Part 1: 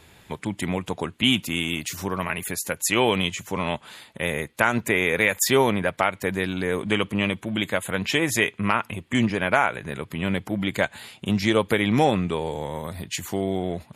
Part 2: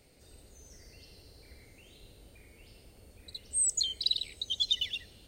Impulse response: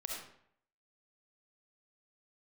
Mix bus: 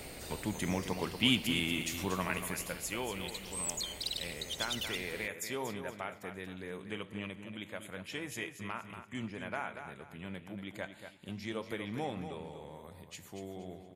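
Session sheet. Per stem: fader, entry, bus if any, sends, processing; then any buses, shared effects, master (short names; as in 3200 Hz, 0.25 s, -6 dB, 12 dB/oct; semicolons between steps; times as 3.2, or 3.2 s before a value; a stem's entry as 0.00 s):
2.37 s -4 dB -> 3.07 s -15 dB, 0.00 s, send -16.5 dB, echo send -8 dB, flange 0.85 Hz, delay 9 ms, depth 4.1 ms, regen -85%
+2.5 dB, 0.00 s, no send, no echo send, bell 5100 Hz -5.5 dB 1.1 oct; spectral compressor 2:1; auto duck -7 dB, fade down 0.90 s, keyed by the first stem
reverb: on, RT60 0.65 s, pre-delay 25 ms
echo: feedback echo 0.235 s, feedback 32%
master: dry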